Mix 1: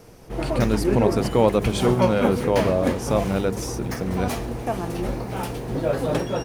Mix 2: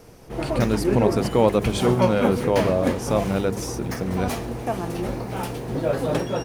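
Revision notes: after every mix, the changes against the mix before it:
background: add high-pass filter 58 Hz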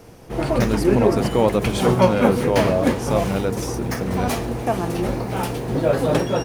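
background +4.5 dB

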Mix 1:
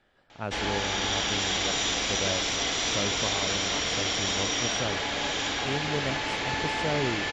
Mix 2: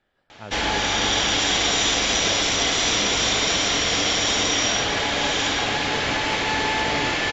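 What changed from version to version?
speech −5.0 dB
background +7.0 dB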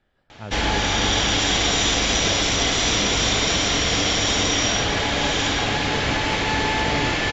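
master: add low-shelf EQ 200 Hz +9 dB

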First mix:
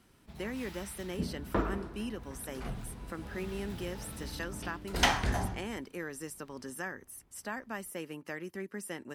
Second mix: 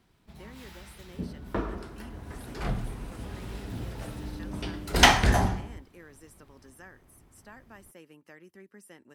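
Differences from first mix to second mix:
speech −11.0 dB
second sound +9.0 dB

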